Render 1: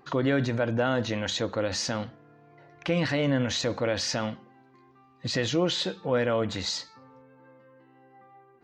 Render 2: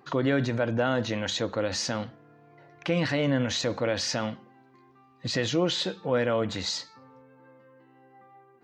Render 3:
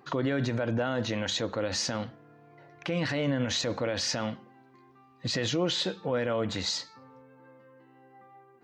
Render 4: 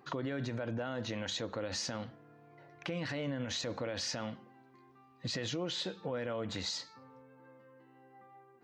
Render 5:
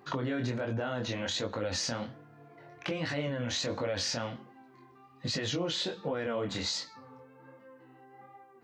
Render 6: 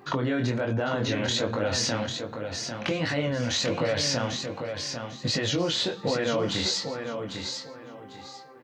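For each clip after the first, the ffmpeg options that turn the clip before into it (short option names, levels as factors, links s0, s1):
-af "highpass=72"
-af "alimiter=limit=0.112:level=0:latency=1:release=63"
-af "acompressor=threshold=0.0251:ratio=2.5,volume=0.668"
-af "flanger=delay=19:depth=6.7:speed=1.3,volume=2.37"
-af "aecho=1:1:797|1594|2391:0.473|0.114|0.0273,volume=2"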